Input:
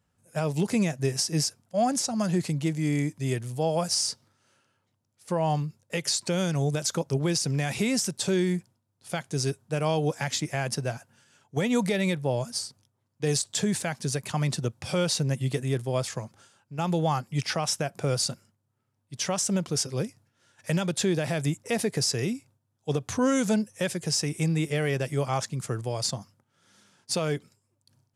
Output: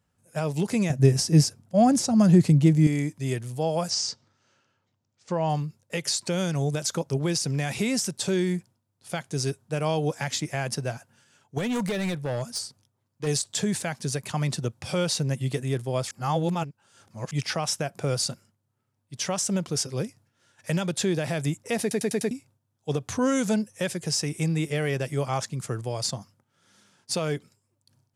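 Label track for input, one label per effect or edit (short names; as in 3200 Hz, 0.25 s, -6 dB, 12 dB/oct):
0.900000	2.870000	low shelf 420 Hz +12 dB
3.900000	5.490000	steep low-pass 7300 Hz
11.580000	13.270000	hard clip -24 dBFS
16.110000	17.310000	reverse
21.810000	21.810000	stutter in place 0.10 s, 5 plays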